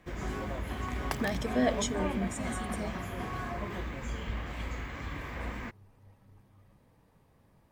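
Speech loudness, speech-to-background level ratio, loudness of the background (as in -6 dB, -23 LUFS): -34.0 LUFS, 3.0 dB, -37.0 LUFS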